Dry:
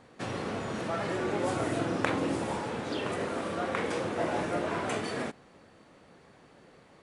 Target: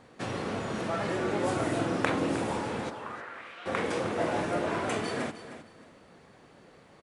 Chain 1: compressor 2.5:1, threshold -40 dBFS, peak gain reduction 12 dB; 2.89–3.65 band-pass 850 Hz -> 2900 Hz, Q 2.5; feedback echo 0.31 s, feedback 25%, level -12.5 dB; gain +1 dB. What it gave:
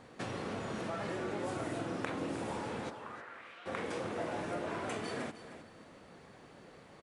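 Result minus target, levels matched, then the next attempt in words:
compressor: peak gain reduction +12 dB
2.89–3.65 band-pass 850 Hz -> 2900 Hz, Q 2.5; feedback echo 0.31 s, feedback 25%, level -12.5 dB; gain +1 dB

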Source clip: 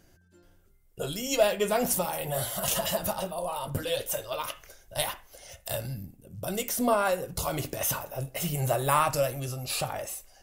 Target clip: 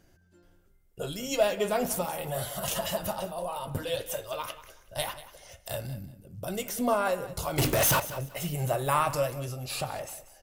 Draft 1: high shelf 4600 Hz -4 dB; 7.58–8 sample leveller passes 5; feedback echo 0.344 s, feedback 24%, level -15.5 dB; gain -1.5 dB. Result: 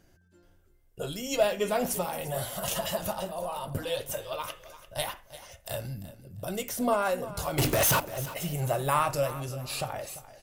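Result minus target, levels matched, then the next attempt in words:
echo 0.157 s late
high shelf 4600 Hz -4 dB; 7.58–8 sample leveller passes 5; feedback echo 0.187 s, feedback 24%, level -15.5 dB; gain -1.5 dB

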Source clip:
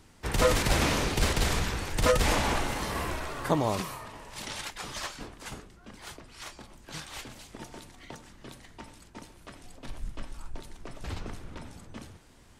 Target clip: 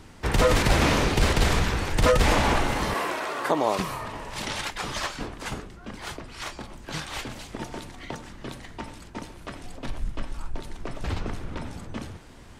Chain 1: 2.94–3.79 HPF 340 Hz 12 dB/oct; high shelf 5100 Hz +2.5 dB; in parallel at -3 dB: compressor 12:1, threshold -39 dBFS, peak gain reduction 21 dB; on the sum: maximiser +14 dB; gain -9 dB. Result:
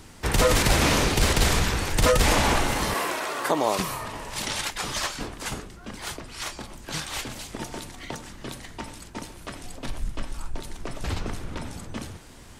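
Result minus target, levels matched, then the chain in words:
8000 Hz band +5.5 dB
2.94–3.79 HPF 340 Hz 12 dB/oct; high shelf 5100 Hz -7.5 dB; in parallel at -3 dB: compressor 12:1, threshold -39 dBFS, peak gain reduction 21 dB; on the sum: maximiser +14 dB; gain -9 dB

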